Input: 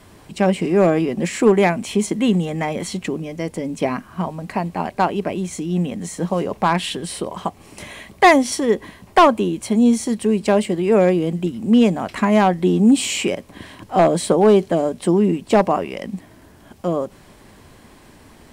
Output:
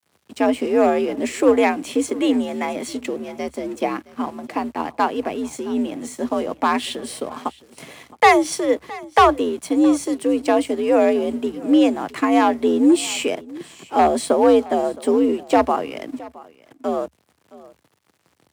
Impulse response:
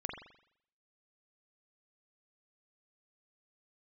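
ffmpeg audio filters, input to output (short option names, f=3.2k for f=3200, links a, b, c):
-af "aeval=exprs='sgn(val(0))*max(abs(val(0))-0.00841,0)':c=same,afreqshift=67,aecho=1:1:667:0.0944,volume=-1dB"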